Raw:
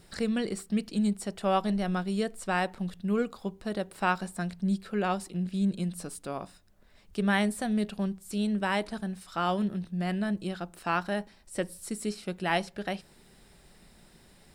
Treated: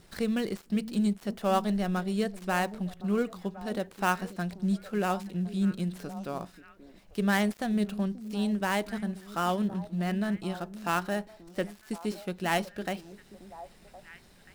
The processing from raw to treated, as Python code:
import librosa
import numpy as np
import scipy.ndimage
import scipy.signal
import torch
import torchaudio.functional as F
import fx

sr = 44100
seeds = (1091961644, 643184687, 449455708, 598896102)

y = fx.dead_time(x, sr, dead_ms=0.063)
y = fx.echo_stepped(y, sr, ms=532, hz=270.0, octaves=1.4, feedback_pct=70, wet_db=-11)